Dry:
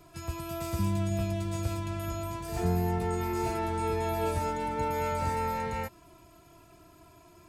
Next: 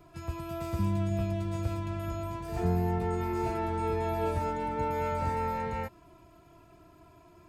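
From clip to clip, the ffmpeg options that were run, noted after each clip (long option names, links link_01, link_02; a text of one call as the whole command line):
ffmpeg -i in.wav -af "equalizer=frequency=10000:width=0.32:gain=-10" out.wav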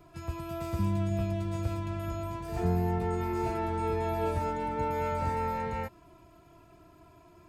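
ffmpeg -i in.wav -af anull out.wav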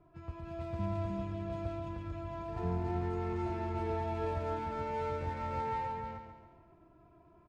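ffmpeg -i in.wav -filter_complex "[0:a]asplit=2[link_01][link_02];[link_02]aecho=0:1:308:0.708[link_03];[link_01][link_03]amix=inputs=2:normalize=0,adynamicsmooth=sensitivity=8:basefreq=1700,asplit=2[link_04][link_05];[link_05]aecho=0:1:139|278|417|556|695:0.422|0.194|0.0892|0.041|0.0189[link_06];[link_04][link_06]amix=inputs=2:normalize=0,volume=-7dB" out.wav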